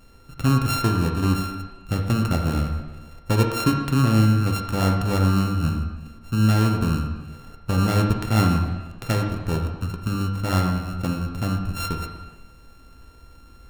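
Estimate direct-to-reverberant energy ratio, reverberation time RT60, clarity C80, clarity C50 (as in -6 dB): 2.0 dB, 1.2 s, 6.5 dB, 5.0 dB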